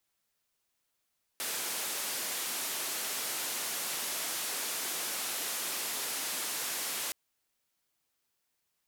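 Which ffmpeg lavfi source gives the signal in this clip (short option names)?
-f lavfi -i "anoisesrc=c=white:d=5.72:r=44100:seed=1,highpass=f=250,lowpass=f=14000,volume=-28.6dB"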